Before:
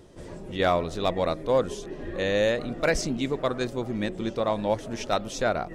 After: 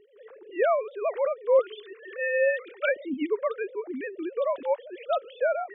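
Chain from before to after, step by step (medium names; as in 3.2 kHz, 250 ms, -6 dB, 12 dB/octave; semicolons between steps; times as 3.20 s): formants replaced by sine waves; 1.59–2.89 s: tilt shelf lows -9 dB, about 930 Hz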